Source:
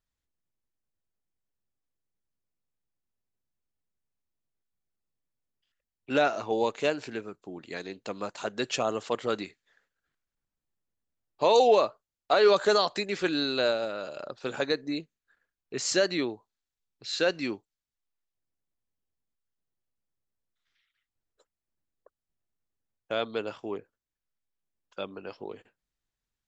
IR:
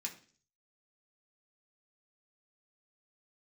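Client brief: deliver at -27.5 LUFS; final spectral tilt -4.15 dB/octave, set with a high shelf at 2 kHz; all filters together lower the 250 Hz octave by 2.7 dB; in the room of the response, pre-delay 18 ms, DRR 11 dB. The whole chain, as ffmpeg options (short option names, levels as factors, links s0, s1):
-filter_complex "[0:a]equalizer=f=250:t=o:g=-3.5,highshelf=f=2000:g=-7.5,asplit=2[s0][s1];[1:a]atrim=start_sample=2205,adelay=18[s2];[s1][s2]afir=irnorm=-1:irlink=0,volume=0.316[s3];[s0][s3]amix=inputs=2:normalize=0,volume=1.33"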